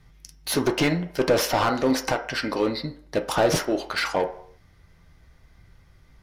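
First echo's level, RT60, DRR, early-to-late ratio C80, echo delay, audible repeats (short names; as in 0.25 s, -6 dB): none, 0.60 s, 4.0 dB, 16.5 dB, none, none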